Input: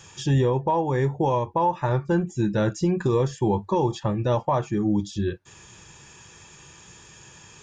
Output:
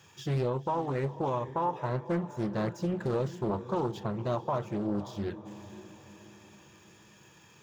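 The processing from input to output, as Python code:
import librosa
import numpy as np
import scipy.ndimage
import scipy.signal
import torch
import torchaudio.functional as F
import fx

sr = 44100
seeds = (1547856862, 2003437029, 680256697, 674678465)

y = scipy.signal.medfilt(x, 5)
y = scipy.signal.sosfilt(scipy.signal.butter(2, 93.0, 'highpass', fs=sr, output='sos'), y)
y = fx.echo_diffused(y, sr, ms=516, feedback_pct=47, wet_db=-14.0)
y = fx.doppler_dist(y, sr, depth_ms=0.64)
y = y * 10.0 ** (-8.0 / 20.0)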